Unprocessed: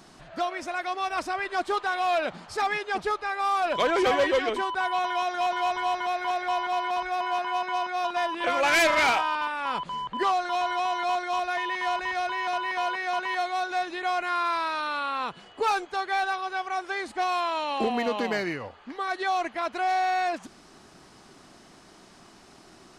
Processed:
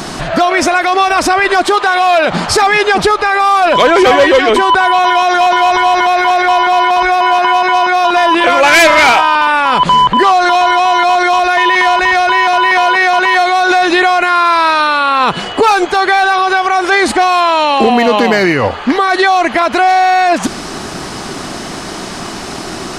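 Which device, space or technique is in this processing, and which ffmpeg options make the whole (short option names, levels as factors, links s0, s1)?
loud club master: -filter_complex "[0:a]acompressor=threshold=0.0398:ratio=2.5,asoftclip=type=hard:threshold=0.0841,alimiter=level_in=31.6:limit=0.891:release=50:level=0:latency=1,asettb=1/sr,asplit=3[s0][s1][s2];[s0]atrim=end=1.664[s3];[s1]atrim=start=1.66:end=2.28,asetpts=PTS-STARTPTS,afade=t=in:d=0.004:c=qsin,afade=t=out:st=0.616:d=0.004:c=qsin,lowshelf=f=120:g=-11.5[s4];[s2]atrim=start=2.276[s5];[s3][s4]acrossfade=d=0.004:c1=hsin:c2=qsin[s6];[s6][s5]acrossfade=d=0.004:c1=qsin:c2=hsin,volume=0.891"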